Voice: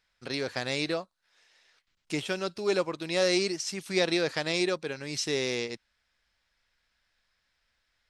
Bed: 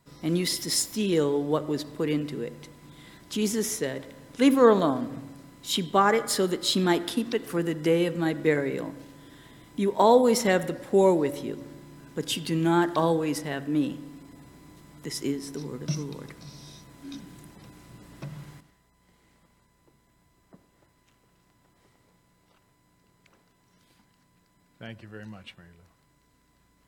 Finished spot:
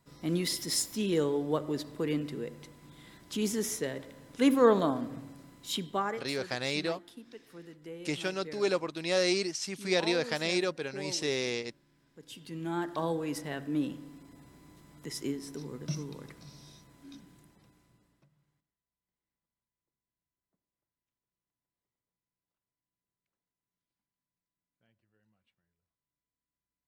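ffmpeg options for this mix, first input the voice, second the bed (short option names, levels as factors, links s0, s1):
-filter_complex "[0:a]adelay=5950,volume=0.794[s0];[1:a]volume=3.76,afade=t=out:st=5.53:d=0.8:silence=0.141254,afade=t=in:st=12.22:d=1.28:silence=0.158489,afade=t=out:st=16.34:d=1.95:silence=0.0473151[s1];[s0][s1]amix=inputs=2:normalize=0"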